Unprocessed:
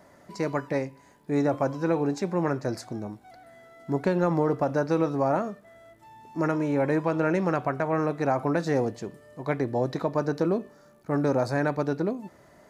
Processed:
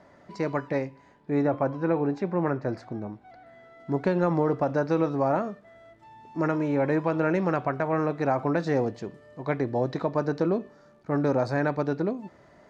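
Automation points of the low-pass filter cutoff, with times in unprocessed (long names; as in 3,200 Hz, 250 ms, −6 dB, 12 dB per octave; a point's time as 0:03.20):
0:00.86 4,400 Hz
0:01.62 2,500 Hz
0:02.90 2,500 Hz
0:04.10 4,900 Hz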